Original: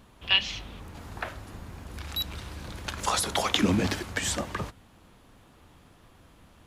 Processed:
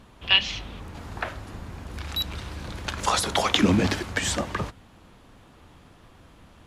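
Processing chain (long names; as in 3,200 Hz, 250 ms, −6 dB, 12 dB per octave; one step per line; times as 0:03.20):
high-shelf EQ 11,000 Hz −10.5 dB
level +4 dB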